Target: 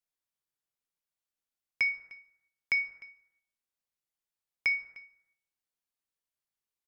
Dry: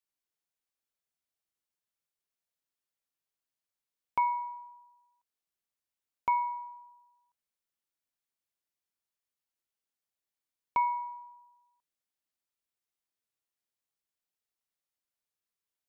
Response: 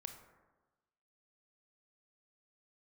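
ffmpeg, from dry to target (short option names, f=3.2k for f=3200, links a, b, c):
-filter_complex "[0:a]asplit=2[a][b];[b]adelay=699.7,volume=-20dB,highshelf=f=4k:g=-15.7[c];[a][c]amix=inputs=2:normalize=0,asetrate=101871,aresample=44100,asplit=2[d][e];[1:a]atrim=start_sample=2205,afade=t=out:st=0.42:d=0.01,atrim=end_sample=18963,lowshelf=f=63:g=7.5[f];[e][f]afir=irnorm=-1:irlink=0,volume=7dB[g];[d][g]amix=inputs=2:normalize=0,volume=-6dB"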